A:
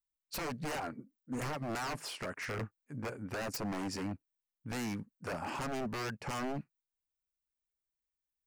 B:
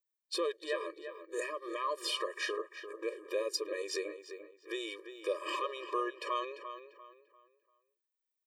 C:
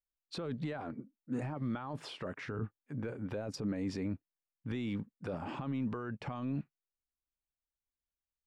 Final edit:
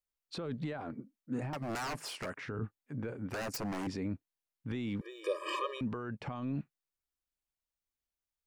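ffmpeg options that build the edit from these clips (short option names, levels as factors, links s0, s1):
-filter_complex "[0:a]asplit=2[s0][s1];[2:a]asplit=4[s2][s3][s4][s5];[s2]atrim=end=1.532[s6];[s0]atrim=start=1.528:end=2.362[s7];[s3]atrim=start=2.358:end=3.302[s8];[s1]atrim=start=3.298:end=3.872[s9];[s4]atrim=start=3.868:end=5.012[s10];[1:a]atrim=start=5.008:end=5.812[s11];[s5]atrim=start=5.808[s12];[s6][s7]acrossfade=d=0.004:c1=hsin:c2=hsin[s13];[s13][s8]acrossfade=d=0.004:c1=hsin:c2=hsin[s14];[s14][s9]acrossfade=d=0.004:c1=hsin:c2=hsin[s15];[s15][s10]acrossfade=d=0.004:c1=hsin:c2=hsin[s16];[s16][s11]acrossfade=d=0.004:c1=hsin:c2=hsin[s17];[s17][s12]acrossfade=d=0.004:c1=hsin:c2=hsin"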